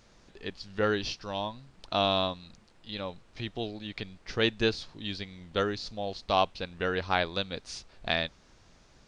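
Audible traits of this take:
background noise floor −60 dBFS
spectral slope −2.5 dB per octave

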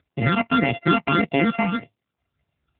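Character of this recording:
a buzz of ramps at a fixed pitch in blocks of 64 samples
phaser sweep stages 8, 1.7 Hz, lowest notch 460–1,400 Hz
AMR narrowband

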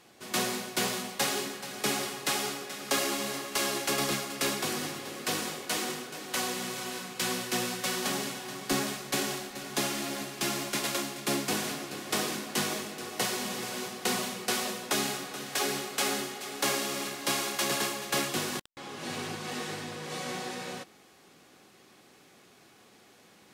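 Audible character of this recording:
background noise floor −58 dBFS
spectral slope −2.5 dB per octave

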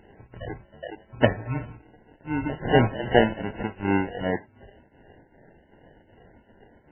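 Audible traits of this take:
tremolo triangle 2.6 Hz, depth 90%
phaser sweep stages 2, 2.6 Hz, lowest notch 250–2,700 Hz
aliases and images of a low sample rate 1,200 Hz, jitter 0%
MP3

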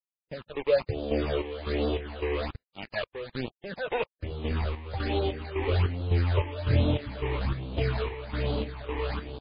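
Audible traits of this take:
a quantiser's noise floor 6 bits, dither none
phaser sweep stages 8, 1.2 Hz, lowest notch 180–1,900 Hz
chopped level 1.8 Hz, depth 65%, duty 55%
MP3

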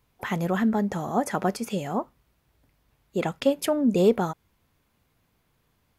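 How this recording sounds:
background noise floor −71 dBFS
spectral slope −6.0 dB per octave

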